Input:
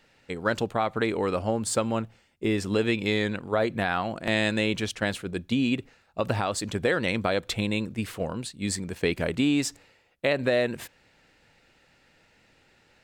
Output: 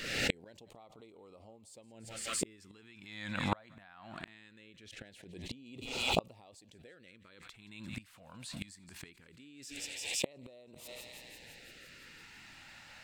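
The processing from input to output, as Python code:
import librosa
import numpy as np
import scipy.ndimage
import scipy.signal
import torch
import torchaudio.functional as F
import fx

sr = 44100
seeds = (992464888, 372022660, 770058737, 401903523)

y = fx.low_shelf(x, sr, hz=300.0, db=-7.0)
y = fx.rider(y, sr, range_db=5, speed_s=0.5)
y = fx.high_shelf(y, sr, hz=5100.0, db=-6.5, at=(3.38, 5.66))
y = fx.echo_thinned(y, sr, ms=170, feedback_pct=72, hz=1000.0, wet_db=-20.0)
y = fx.filter_lfo_notch(y, sr, shape='sine', hz=0.21, low_hz=400.0, high_hz=1700.0, q=0.81)
y = fx.gate_flip(y, sr, shuts_db=-29.0, range_db=-39)
y = fx.pre_swell(y, sr, db_per_s=49.0)
y = F.gain(torch.from_numpy(y), 12.0).numpy()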